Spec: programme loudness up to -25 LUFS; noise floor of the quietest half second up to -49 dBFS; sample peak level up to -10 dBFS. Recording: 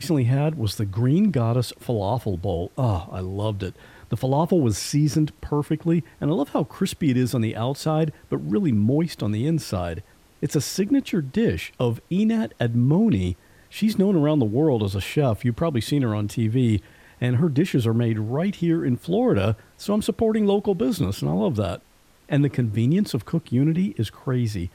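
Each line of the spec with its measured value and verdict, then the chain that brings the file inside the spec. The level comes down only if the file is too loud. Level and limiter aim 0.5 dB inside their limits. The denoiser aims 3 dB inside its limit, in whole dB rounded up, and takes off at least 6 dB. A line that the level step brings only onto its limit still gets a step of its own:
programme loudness -23.0 LUFS: fail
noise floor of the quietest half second -55 dBFS: pass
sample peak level -8.5 dBFS: fail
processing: trim -2.5 dB

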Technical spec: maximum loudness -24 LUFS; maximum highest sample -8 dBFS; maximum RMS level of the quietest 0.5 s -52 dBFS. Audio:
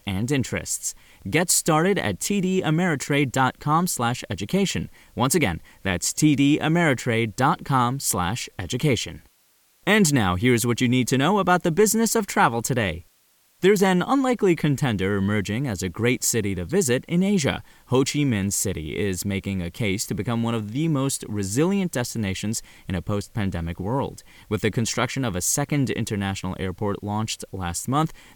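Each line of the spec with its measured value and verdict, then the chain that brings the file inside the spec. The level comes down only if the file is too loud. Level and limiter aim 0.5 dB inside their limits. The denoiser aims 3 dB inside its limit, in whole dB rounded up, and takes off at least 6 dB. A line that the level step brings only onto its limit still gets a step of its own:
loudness -23.0 LUFS: fail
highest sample -7.0 dBFS: fail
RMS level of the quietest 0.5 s -62 dBFS: pass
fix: trim -1.5 dB

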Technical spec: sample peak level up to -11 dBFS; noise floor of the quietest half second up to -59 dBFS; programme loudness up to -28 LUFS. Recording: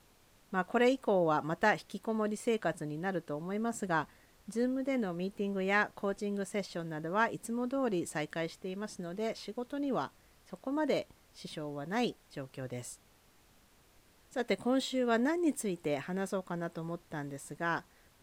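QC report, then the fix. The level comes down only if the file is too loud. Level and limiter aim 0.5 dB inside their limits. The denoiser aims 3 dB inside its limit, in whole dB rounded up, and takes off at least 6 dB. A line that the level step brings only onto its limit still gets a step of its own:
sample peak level -15.0 dBFS: pass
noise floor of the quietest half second -64 dBFS: pass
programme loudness -34.5 LUFS: pass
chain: none needed

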